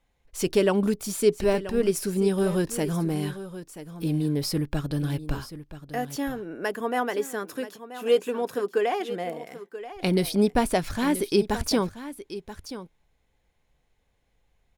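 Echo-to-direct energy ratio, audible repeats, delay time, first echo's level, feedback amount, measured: -13.5 dB, 1, 0.981 s, -13.5 dB, no steady repeat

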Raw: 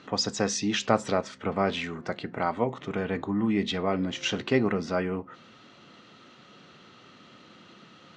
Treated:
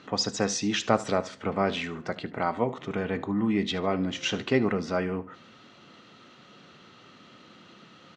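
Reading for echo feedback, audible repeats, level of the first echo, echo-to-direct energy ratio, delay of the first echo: 33%, 2, -18.0 dB, -17.5 dB, 75 ms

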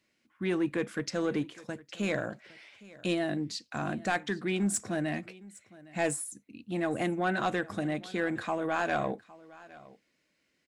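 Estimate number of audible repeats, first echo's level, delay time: 1, -21.0 dB, 0.811 s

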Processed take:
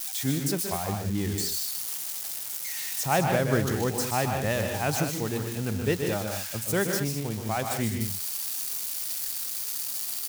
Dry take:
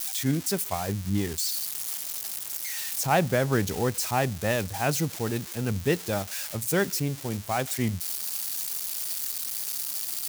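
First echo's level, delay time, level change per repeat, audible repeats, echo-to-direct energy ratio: -7.5 dB, 0.125 s, no steady repeat, 2, -3.0 dB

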